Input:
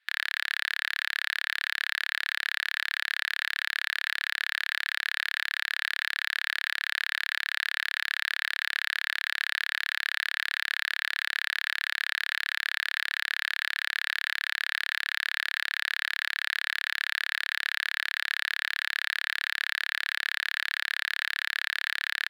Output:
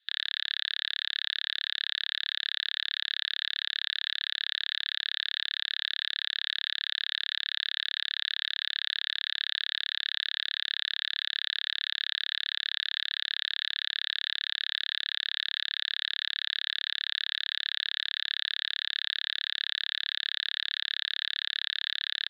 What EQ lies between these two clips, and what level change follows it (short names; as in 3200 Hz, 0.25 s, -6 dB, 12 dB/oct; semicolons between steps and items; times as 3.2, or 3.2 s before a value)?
HPF 1500 Hz 24 dB/oct; ladder low-pass 3900 Hz, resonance 75%; bell 2300 Hz -11 dB 0.48 oct; +7.0 dB